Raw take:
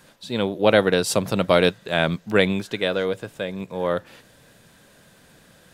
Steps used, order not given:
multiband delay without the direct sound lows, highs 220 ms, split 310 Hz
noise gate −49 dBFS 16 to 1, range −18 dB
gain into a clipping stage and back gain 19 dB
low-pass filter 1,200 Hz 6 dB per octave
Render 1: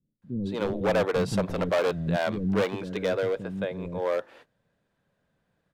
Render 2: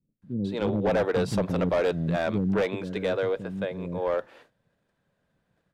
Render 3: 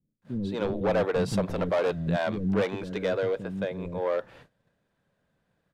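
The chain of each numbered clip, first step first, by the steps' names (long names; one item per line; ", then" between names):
low-pass filter, then noise gate, then gain into a clipping stage and back, then multiband delay without the direct sound
noise gate, then multiband delay without the direct sound, then gain into a clipping stage and back, then low-pass filter
gain into a clipping stage and back, then multiband delay without the direct sound, then noise gate, then low-pass filter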